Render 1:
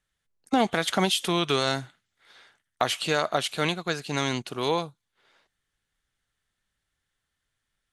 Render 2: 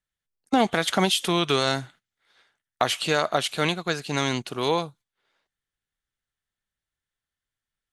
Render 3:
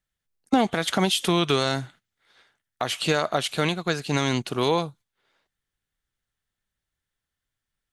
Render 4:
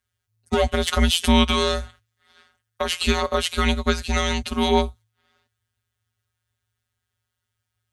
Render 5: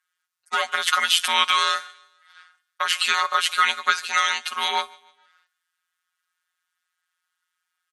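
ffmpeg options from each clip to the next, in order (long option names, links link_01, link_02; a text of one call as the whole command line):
ffmpeg -i in.wav -af "agate=range=-11dB:threshold=-51dB:ratio=16:detection=peak,volume=2dB" out.wav
ffmpeg -i in.wav -af "lowshelf=frequency=330:gain=4,alimiter=limit=-12dB:level=0:latency=1:release=325,volume=2.5dB" out.wav
ffmpeg -i in.wav -af "afftfilt=real='hypot(re,im)*cos(PI*b)':imag='0':win_size=1024:overlap=0.75,afreqshift=-110,acontrast=81" out.wav
ffmpeg -i in.wav -af "highpass=frequency=1300:width_type=q:width=2.3,aecho=1:1:148|296|444:0.0631|0.0259|0.0106,volume=1.5dB" -ar 44100 -c:a libmp3lame -b:a 56k out.mp3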